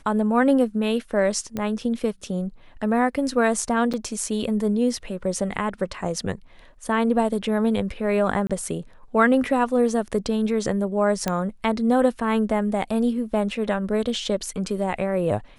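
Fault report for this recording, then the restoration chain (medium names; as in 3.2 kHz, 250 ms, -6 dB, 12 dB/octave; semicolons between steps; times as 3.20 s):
1.57 s: pop -15 dBFS
3.93–3.94 s: dropout 6.7 ms
8.47–8.50 s: dropout 26 ms
11.28 s: pop -9 dBFS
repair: de-click; interpolate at 3.93 s, 6.7 ms; interpolate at 8.47 s, 26 ms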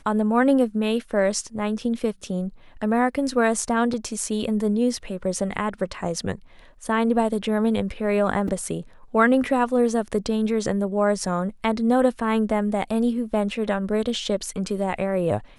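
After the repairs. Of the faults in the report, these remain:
nothing left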